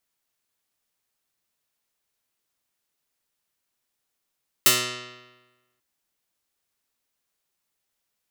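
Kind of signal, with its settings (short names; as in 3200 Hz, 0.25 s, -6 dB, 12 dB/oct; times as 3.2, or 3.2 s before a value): plucked string B2, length 1.14 s, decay 1.22 s, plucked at 0.15, medium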